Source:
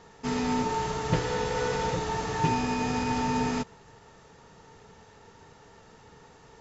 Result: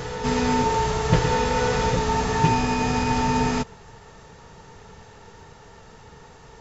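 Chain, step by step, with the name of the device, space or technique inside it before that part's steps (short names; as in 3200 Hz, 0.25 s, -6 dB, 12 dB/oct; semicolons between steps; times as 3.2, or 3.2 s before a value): reverse echo 1.193 s -8 dB; low shelf boost with a cut just above (low shelf 68 Hz +8 dB; bell 290 Hz -3.5 dB 0.65 oct); gain +6 dB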